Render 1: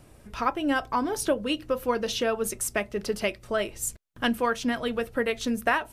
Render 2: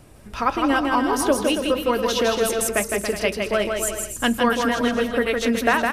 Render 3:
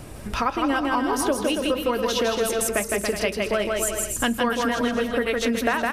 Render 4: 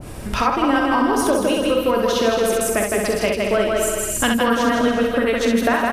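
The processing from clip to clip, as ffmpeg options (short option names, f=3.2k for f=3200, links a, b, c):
-af "aecho=1:1:160|280|370|437.5|488.1:0.631|0.398|0.251|0.158|0.1,volume=4.5dB"
-af "acompressor=threshold=-35dB:ratio=2.5,volume=9dB"
-filter_complex "[0:a]asplit=2[a][b];[b]aecho=0:1:44|65:0.376|0.596[c];[a][c]amix=inputs=2:normalize=0,adynamicequalizer=threshold=0.0251:dfrequency=1500:dqfactor=0.7:tfrequency=1500:tqfactor=0.7:attack=5:release=100:ratio=0.375:range=2:mode=cutabove:tftype=highshelf,volume=4dB"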